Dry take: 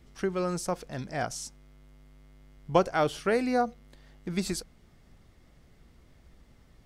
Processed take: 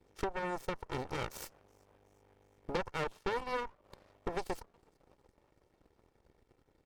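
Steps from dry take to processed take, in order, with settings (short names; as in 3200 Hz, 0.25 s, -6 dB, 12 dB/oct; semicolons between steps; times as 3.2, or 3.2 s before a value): minimum comb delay 2.2 ms; bell 400 Hz +11 dB 2.7 oct; compressor 4:1, threshold -33 dBFS, peak gain reduction 18.5 dB; frequency-shifting echo 0.368 s, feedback 63%, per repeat +73 Hz, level -22.5 dB; added harmonics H 3 -26 dB, 5 -27 dB, 7 -18 dB, 8 -12 dB, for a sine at -18.5 dBFS; gain -4 dB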